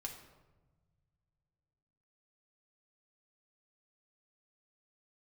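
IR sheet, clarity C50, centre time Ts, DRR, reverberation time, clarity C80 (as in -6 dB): 7.0 dB, 25 ms, 0.5 dB, 1.3 s, 9.5 dB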